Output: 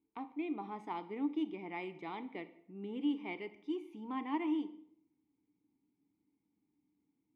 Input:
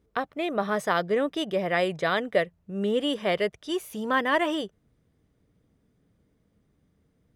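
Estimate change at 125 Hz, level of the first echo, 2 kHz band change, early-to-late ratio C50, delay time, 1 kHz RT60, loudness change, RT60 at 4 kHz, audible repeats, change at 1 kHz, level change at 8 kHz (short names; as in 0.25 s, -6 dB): -17.5 dB, none, -20.0 dB, 15.0 dB, none, 0.65 s, -13.0 dB, 0.50 s, none, -14.0 dB, under -30 dB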